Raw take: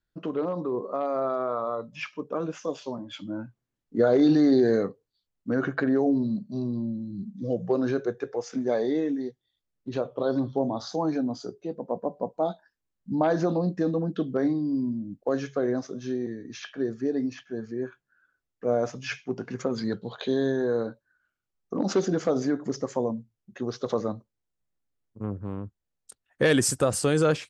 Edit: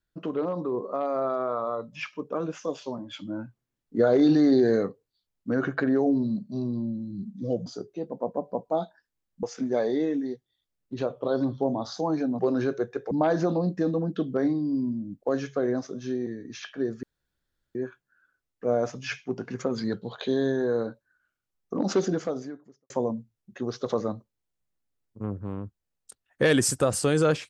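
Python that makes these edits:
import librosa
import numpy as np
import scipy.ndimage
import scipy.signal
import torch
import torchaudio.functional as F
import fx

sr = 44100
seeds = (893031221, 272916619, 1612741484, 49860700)

y = fx.edit(x, sr, fx.swap(start_s=7.66, length_s=0.72, other_s=11.34, other_length_s=1.77),
    fx.room_tone_fill(start_s=17.03, length_s=0.72),
    fx.fade_out_span(start_s=22.08, length_s=0.82, curve='qua'), tone=tone)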